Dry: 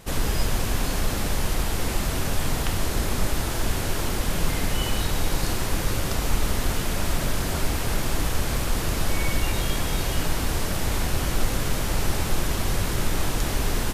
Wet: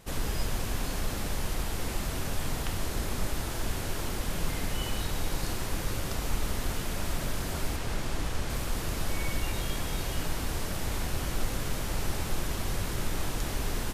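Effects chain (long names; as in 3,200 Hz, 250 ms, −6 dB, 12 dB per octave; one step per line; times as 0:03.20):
0:07.76–0:08.50: high-shelf EQ 12,000 Hz −12 dB
level −7 dB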